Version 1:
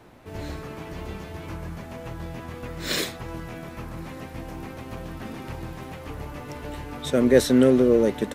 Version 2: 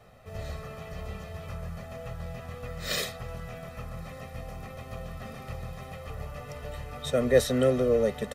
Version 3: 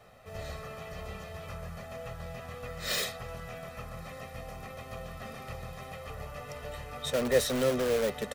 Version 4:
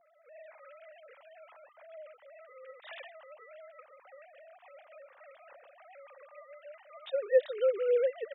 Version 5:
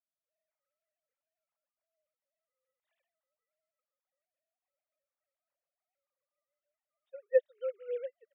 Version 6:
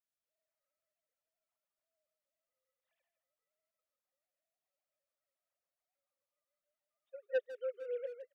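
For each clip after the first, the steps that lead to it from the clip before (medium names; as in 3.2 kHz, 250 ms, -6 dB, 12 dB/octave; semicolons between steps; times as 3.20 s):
comb 1.6 ms, depth 100%; trim -6.5 dB
bass shelf 310 Hz -6.5 dB; in parallel at -6 dB: integer overflow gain 25 dB; on the sum: trim -2.5 dB
formants replaced by sine waves; gain riding 0.5 s
upward expansion 2.5:1, over -46 dBFS
saturation -24 dBFS, distortion -8 dB; speakerphone echo 160 ms, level -7 dB; trim -2.5 dB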